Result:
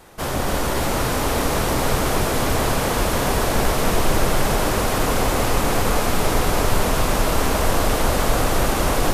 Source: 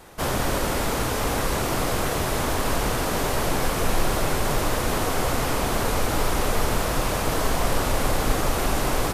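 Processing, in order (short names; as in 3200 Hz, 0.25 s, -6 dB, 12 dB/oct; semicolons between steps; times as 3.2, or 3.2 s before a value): echo with dull and thin repeats by turns 0.142 s, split 1100 Hz, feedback 89%, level -2 dB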